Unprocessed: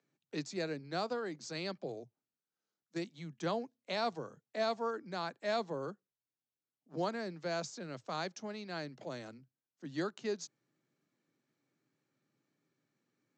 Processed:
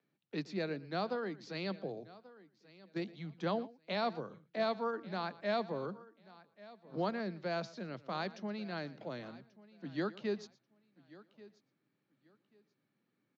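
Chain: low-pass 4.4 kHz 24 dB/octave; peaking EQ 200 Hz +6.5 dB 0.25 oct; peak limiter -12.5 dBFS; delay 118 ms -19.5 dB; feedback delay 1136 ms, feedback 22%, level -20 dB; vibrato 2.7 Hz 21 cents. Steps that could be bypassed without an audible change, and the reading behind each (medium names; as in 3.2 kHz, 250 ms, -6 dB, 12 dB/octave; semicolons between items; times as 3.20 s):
peak limiter -12.5 dBFS: peak at its input -23.0 dBFS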